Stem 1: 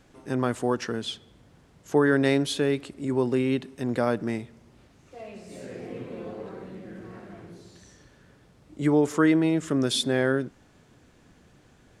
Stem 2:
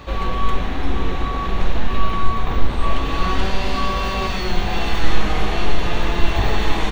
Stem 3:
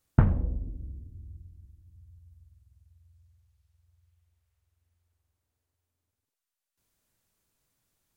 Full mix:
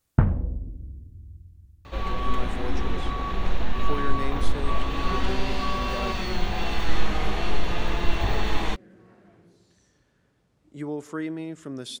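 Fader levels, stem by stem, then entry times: −11.0, −6.0, +1.5 decibels; 1.95, 1.85, 0.00 seconds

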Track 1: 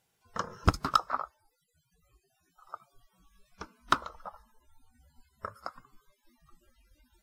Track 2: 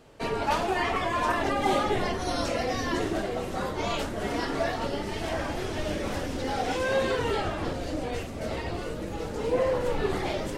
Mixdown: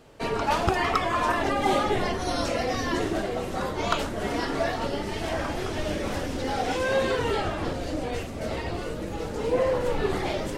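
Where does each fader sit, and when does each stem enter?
−2.5, +1.5 decibels; 0.00, 0.00 seconds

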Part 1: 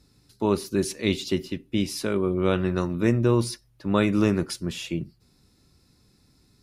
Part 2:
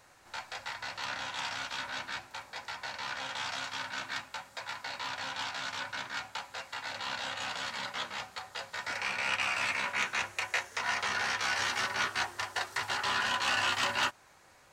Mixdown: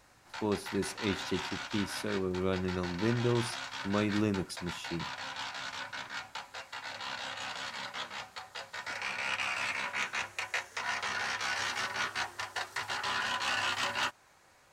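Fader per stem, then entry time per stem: −9.0, −2.5 decibels; 0.00, 0.00 seconds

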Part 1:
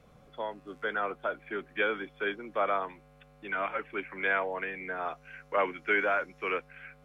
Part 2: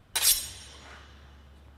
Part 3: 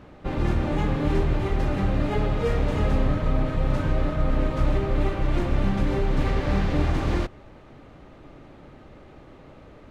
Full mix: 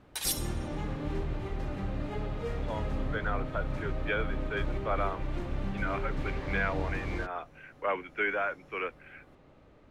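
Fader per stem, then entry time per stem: −3.0, −9.0, −11.0 decibels; 2.30, 0.00, 0.00 seconds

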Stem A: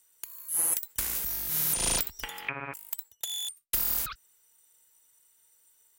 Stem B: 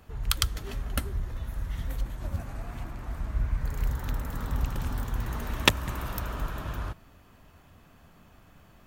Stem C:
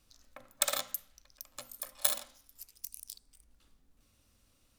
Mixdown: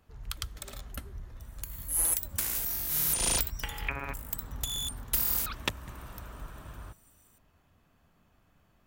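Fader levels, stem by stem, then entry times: −0.5, −11.0, −14.5 decibels; 1.40, 0.00, 0.00 seconds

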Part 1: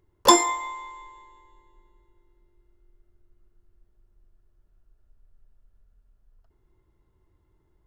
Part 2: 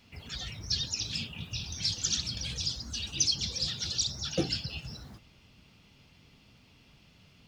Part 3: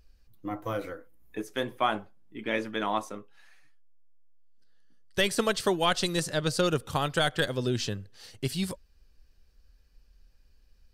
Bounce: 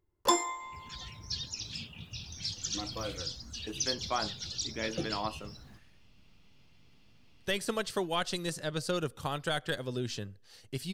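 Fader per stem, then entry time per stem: −10.5, −6.0, −6.5 decibels; 0.00, 0.60, 2.30 seconds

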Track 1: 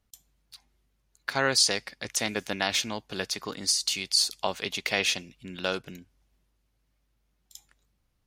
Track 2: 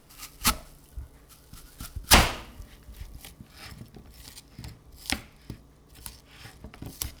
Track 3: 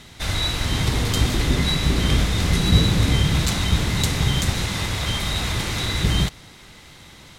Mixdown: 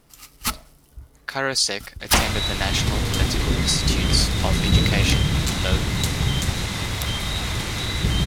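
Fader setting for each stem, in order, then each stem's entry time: +1.5, −1.0, −1.5 decibels; 0.00, 0.00, 2.00 seconds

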